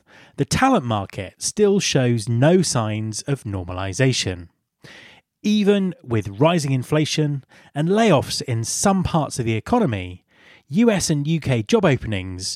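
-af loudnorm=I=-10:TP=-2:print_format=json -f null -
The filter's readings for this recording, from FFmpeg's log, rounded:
"input_i" : "-20.2",
"input_tp" : "-3.7",
"input_lra" : "1.5",
"input_thresh" : "-30.8",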